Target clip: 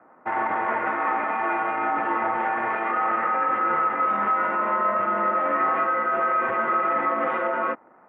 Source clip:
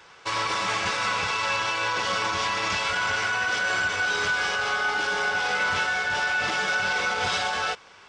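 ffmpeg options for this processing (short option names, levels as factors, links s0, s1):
-af "adynamicsmooth=sensitivity=4.5:basefreq=990,highpass=f=470:t=q:w=0.5412,highpass=f=470:t=q:w=1.307,lowpass=f=2100:t=q:w=0.5176,lowpass=f=2100:t=q:w=0.7071,lowpass=f=2100:t=q:w=1.932,afreqshift=-210,volume=1.5"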